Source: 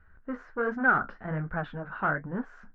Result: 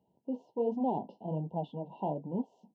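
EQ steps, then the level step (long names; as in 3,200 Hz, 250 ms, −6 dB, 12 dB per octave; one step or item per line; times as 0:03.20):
high-pass filter 160 Hz 24 dB per octave
linear-phase brick-wall band-stop 1,000–2,700 Hz
high-shelf EQ 2,100 Hz −7.5 dB
0.0 dB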